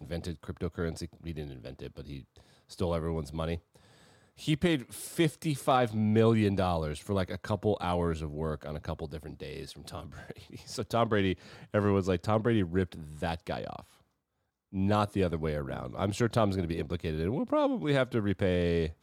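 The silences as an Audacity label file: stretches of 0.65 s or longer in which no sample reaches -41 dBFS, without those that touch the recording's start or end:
3.580000	4.400000	silence
13.810000	14.730000	silence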